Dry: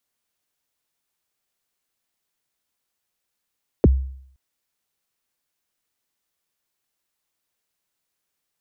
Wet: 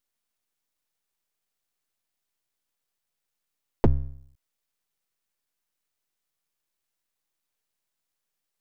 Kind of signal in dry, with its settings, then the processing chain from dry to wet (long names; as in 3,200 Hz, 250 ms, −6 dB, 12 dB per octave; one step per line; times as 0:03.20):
synth kick length 0.52 s, from 540 Hz, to 66 Hz, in 29 ms, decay 0.64 s, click off, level −7.5 dB
half-wave rectification